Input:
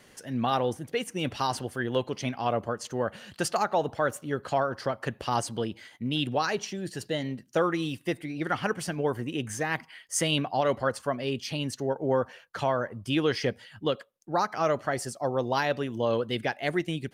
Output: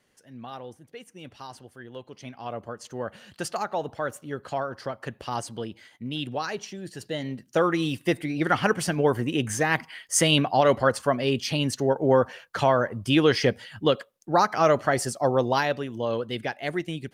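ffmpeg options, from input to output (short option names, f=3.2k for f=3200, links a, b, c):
-af "volume=6dB,afade=t=in:st=2.01:d=1.1:silence=0.316228,afade=t=in:st=6.96:d=1.2:silence=0.354813,afade=t=out:st=15.33:d=0.5:silence=0.446684"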